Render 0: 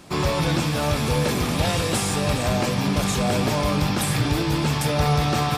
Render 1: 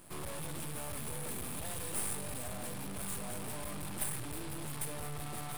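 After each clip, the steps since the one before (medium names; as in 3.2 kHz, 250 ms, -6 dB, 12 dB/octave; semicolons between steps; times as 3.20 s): saturation -27.5 dBFS, distortion -7 dB; resonant high shelf 7.7 kHz +9 dB, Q 3; half-wave rectifier; trim -8 dB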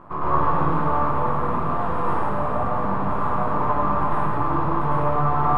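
gain riding 2 s; resonant low-pass 1.1 kHz, resonance Q 4.9; plate-style reverb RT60 1.5 s, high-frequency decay 0.9×, pre-delay 85 ms, DRR -8.5 dB; trim +7.5 dB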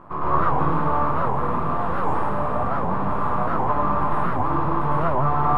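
warped record 78 rpm, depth 250 cents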